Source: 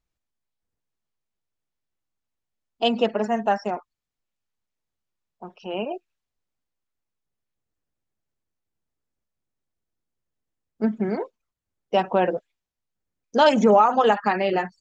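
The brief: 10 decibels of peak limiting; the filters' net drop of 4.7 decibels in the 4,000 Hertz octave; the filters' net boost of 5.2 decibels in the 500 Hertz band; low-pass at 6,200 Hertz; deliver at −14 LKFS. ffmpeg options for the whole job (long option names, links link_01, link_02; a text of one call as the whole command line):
ffmpeg -i in.wav -af "lowpass=6200,equalizer=frequency=500:width_type=o:gain=6.5,equalizer=frequency=4000:width_type=o:gain=-7,volume=9.5dB,alimiter=limit=-2.5dB:level=0:latency=1" out.wav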